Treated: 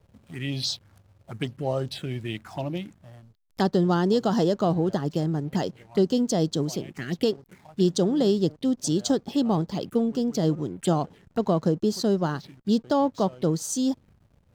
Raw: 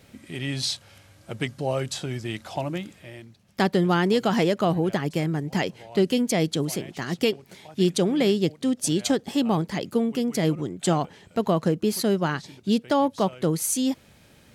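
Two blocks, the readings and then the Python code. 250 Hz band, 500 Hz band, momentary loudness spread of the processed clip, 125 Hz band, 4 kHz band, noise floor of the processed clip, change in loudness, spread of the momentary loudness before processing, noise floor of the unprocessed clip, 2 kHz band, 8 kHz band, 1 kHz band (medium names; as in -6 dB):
0.0 dB, -0.5 dB, 11 LU, 0.0 dB, -3.0 dB, -62 dBFS, -1.0 dB, 10 LU, -55 dBFS, -8.0 dB, -4.0 dB, -2.0 dB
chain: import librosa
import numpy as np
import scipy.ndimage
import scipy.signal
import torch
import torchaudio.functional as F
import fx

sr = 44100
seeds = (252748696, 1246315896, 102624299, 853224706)

y = fx.env_phaser(x, sr, low_hz=250.0, high_hz=2300.0, full_db=-23.0)
y = fx.backlash(y, sr, play_db=-47.0)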